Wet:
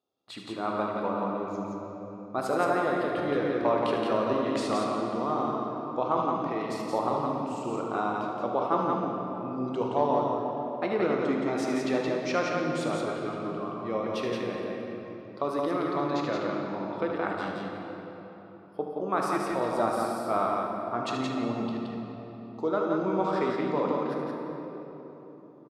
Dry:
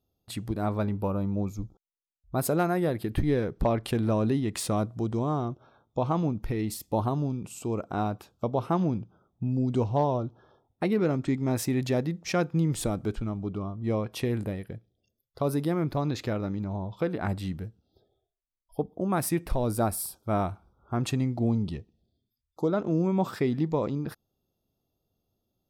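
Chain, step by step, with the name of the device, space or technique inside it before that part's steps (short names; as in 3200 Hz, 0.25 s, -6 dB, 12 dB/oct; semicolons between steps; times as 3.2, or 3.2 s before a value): station announcement (BPF 350–4600 Hz; bell 1200 Hz +6 dB 0.4 oct; loudspeakers at several distances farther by 26 m -10 dB, 59 m -3 dB; reverb RT60 3.8 s, pre-delay 14 ms, DRR 1.5 dB); gain -1 dB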